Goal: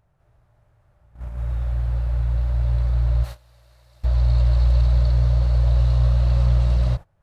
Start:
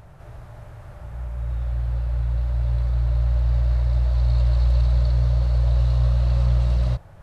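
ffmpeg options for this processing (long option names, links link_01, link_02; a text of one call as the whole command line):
ffmpeg -i in.wav -filter_complex "[0:a]asplit=3[link_01][link_02][link_03];[link_01]afade=type=out:start_time=3.23:duration=0.02[link_04];[link_02]aemphasis=mode=production:type=riaa,afade=type=in:start_time=3.23:duration=0.02,afade=type=out:start_time=4.03:duration=0.02[link_05];[link_03]afade=type=in:start_time=4.03:duration=0.02[link_06];[link_04][link_05][link_06]amix=inputs=3:normalize=0,agate=range=-21dB:threshold=-29dB:ratio=16:detection=peak,volume=1.5dB" out.wav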